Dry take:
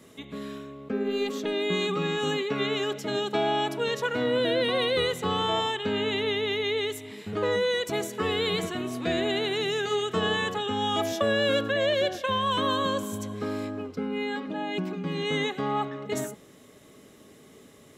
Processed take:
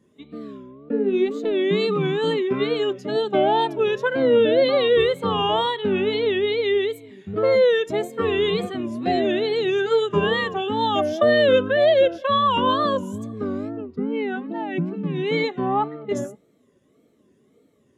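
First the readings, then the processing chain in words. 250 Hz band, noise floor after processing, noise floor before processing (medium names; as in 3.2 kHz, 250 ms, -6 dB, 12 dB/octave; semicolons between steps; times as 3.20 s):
+5.5 dB, -61 dBFS, -53 dBFS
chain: wow and flutter 150 cents; spectral contrast expander 1.5:1; trim +6.5 dB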